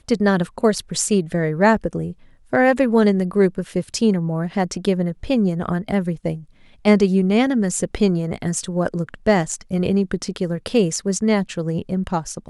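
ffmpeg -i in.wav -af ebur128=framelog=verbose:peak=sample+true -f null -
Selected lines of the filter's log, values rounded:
Integrated loudness:
  I:         -20.0 LUFS
  Threshold: -30.2 LUFS
Loudness range:
  LRA:         2.7 LU
  Threshold: -40.1 LUFS
  LRA low:   -21.6 LUFS
  LRA high:  -18.9 LUFS
Sample peak:
  Peak:       -2.7 dBFS
True peak:
  Peak:       -2.7 dBFS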